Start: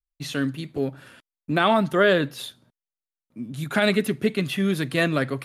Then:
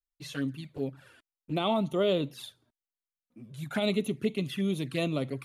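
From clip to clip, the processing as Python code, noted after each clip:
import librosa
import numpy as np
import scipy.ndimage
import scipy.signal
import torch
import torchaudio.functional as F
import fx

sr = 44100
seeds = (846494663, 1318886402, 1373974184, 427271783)

y = fx.env_flanger(x, sr, rest_ms=4.1, full_db=-20.0)
y = y * librosa.db_to_amplitude(-6.0)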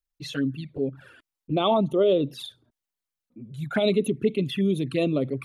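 y = fx.envelope_sharpen(x, sr, power=1.5)
y = y * librosa.db_to_amplitude(6.0)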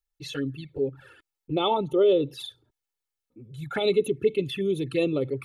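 y = x + 0.61 * np.pad(x, (int(2.3 * sr / 1000.0), 0))[:len(x)]
y = y * librosa.db_to_amplitude(-2.0)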